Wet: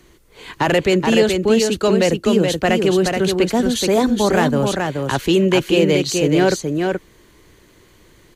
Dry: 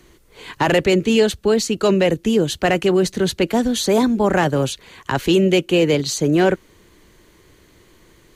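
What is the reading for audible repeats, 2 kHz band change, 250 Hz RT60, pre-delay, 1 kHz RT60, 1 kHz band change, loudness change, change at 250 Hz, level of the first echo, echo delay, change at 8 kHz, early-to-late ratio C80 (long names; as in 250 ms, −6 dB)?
1, +1.5 dB, no reverb audible, no reverb audible, no reverb audible, +1.5 dB, +1.0 dB, +1.0 dB, −4.5 dB, 426 ms, +1.5 dB, no reverb audible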